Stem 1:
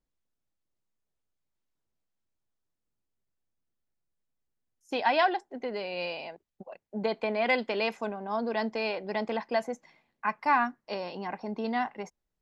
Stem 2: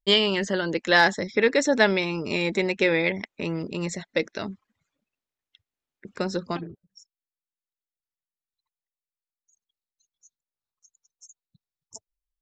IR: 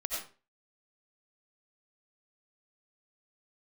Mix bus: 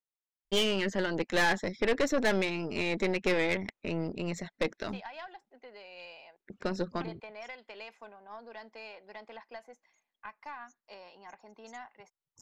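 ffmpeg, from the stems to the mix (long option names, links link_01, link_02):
-filter_complex "[0:a]highpass=frequency=1200:poles=1,acompressor=threshold=-32dB:ratio=6,volume=-4.5dB[link_01];[1:a]adelay=450,volume=-1dB[link_02];[link_01][link_02]amix=inputs=2:normalize=0,highshelf=frequency=4200:gain=-8,aeval=exprs='(tanh(12.6*val(0)+0.65)-tanh(0.65))/12.6':channel_layout=same"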